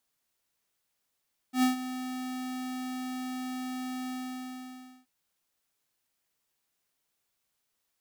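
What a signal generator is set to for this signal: ADSR square 255 Hz, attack 98 ms, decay 128 ms, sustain -13.5 dB, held 2.56 s, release 968 ms -22.5 dBFS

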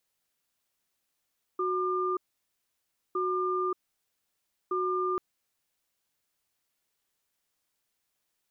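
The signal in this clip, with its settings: cadence 368 Hz, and 1.2 kHz, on 0.58 s, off 0.98 s, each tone -29 dBFS 3.59 s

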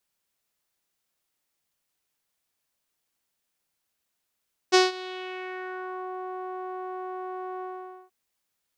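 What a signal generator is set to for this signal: synth note saw F#4 12 dB/octave, low-pass 1 kHz, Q 2.5, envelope 2.5 oct, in 1.36 s, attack 24 ms, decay 0.17 s, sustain -21 dB, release 0.48 s, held 2.90 s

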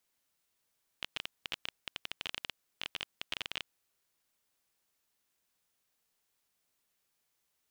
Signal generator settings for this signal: random clicks 15 per s -18.5 dBFS 2.92 s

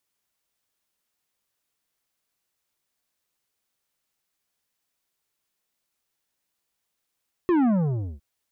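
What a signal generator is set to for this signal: sub drop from 370 Hz, over 0.71 s, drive 10 dB, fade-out 0.54 s, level -18.5 dB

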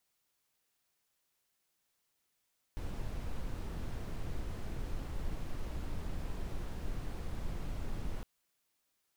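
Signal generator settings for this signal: noise brown, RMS -37 dBFS 5.46 s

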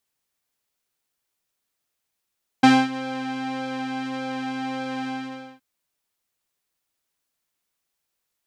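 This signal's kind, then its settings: synth patch with pulse-width modulation C4, oscillator 2 saw, interval +19 st, detune 15 cents, oscillator 2 level -0.5 dB, sub -17 dB, filter lowpass, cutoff 3.6 kHz, Q 0.71, filter envelope 0.5 oct, attack 8.9 ms, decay 0.24 s, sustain -17.5 dB, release 0.52 s, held 2.45 s, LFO 1.7 Hz, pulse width 42%, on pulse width 15%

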